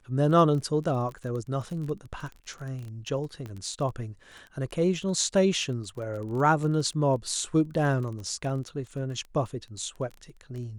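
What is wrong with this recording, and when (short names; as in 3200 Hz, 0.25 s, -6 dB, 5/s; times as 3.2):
crackle 23/s -35 dBFS
3.46 pop -26 dBFS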